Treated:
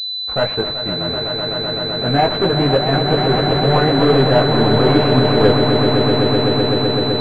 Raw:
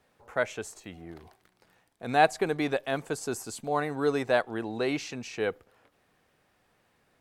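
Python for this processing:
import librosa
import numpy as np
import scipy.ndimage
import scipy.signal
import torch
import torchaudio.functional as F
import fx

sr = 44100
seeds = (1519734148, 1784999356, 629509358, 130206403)

y = fx.low_shelf(x, sr, hz=140.0, db=9.0)
y = fx.leveller(y, sr, passes=5)
y = fx.chorus_voices(y, sr, voices=4, hz=0.71, base_ms=19, depth_ms=4.1, mix_pct=45)
y = fx.echo_swell(y, sr, ms=127, loudest=8, wet_db=-9.0)
y = fx.pwm(y, sr, carrier_hz=4000.0)
y = y * 10.0 ** (1.0 / 20.0)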